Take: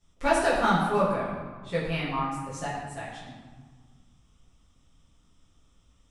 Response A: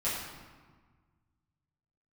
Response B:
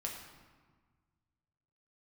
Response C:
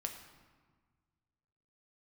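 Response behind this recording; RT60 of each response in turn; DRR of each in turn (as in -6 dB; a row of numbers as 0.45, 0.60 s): A; 1.5, 1.5, 1.5 s; -11.0, -1.0, 3.5 dB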